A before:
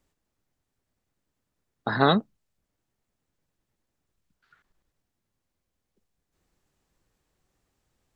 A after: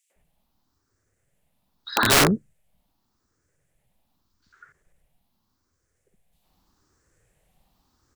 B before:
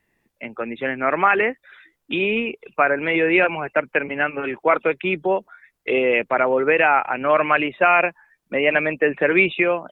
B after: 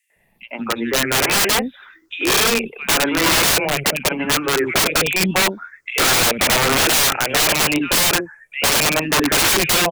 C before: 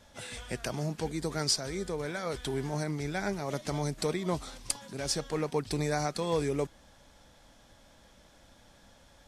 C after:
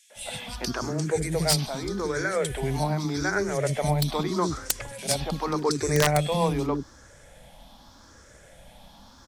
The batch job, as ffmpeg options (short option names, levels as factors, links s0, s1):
-filter_complex "[0:a]afftfilt=real='re*pow(10,11/40*sin(2*PI*(0.51*log(max(b,1)*sr/1024/100)/log(2)-(0.83)*(pts-256)/sr)))':imag='im*pow(10,11/40*sin(2*PI*(0.51*log(max(b,1)*sr/1024/100)/log(2)-(0.83)*(pts-256)/sr)))':win_size=1024:overlap=0.75,acrossover=split=330|2800[s0][s1][s2];[s1]adelay=100[s3];[s0]adelay=160[s4];[s4][s3][s2]amix=inputs=3:normalize=0,aeval=exprs='(mod(7.5*val(0)+1,2)-1)/7.5':c=same,volume=2.24"